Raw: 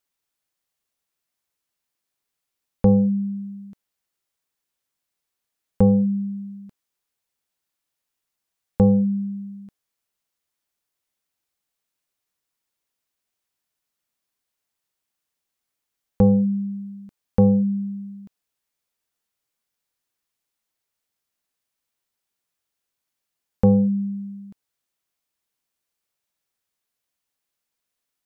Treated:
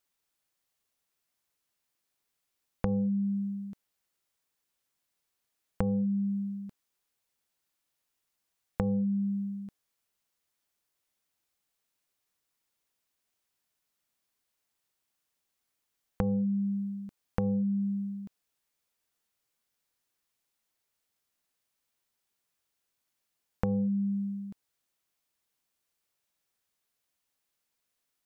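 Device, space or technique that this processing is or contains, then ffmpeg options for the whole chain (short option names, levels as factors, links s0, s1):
serial compression, leveller first: -af "acompressor=threshold=0.126:ratio=6,acompressor=threshold=0.0447:ratio=6"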